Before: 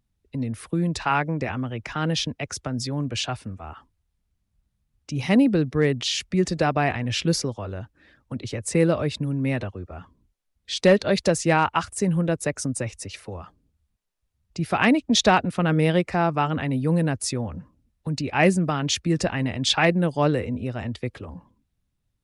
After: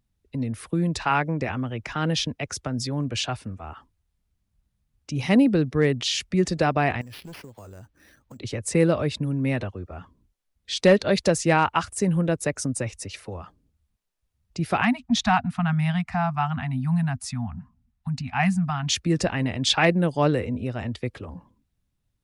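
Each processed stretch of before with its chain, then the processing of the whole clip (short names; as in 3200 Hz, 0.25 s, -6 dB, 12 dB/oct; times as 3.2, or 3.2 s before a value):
7.01–8.4 sample-rate reducer 7600 Hz + hard clip -18 dBFS + compressor 4:1, threshold -42 dBFS
14.81–18.89 Chebyshev band-stop 250–700 Hz, order 4 + high shelf 2300 Hz -7 dB
whole clip: dry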